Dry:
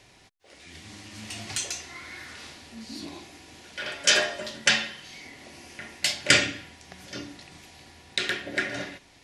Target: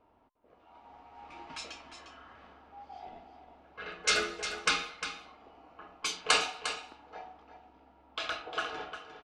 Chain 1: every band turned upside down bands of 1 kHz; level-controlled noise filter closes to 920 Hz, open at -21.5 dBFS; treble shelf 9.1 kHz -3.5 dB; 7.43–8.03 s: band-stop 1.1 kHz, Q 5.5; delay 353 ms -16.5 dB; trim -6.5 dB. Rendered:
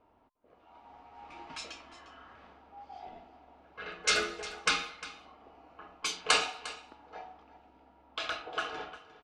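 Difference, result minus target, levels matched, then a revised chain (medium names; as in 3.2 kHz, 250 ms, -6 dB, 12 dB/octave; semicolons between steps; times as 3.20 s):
echo-to-direct -6.5 dB
every band turned upside down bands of 1 kHz; level-controlled noise filter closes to 920 Hz, open at -21.5 dBFS; treble shelf 9.1 kHz -3.5 dB; 7.43–8.03 s: band-stop 1.1 kHz, Q 5.5; delay 353 ms -10 dB; trim -6.5 dB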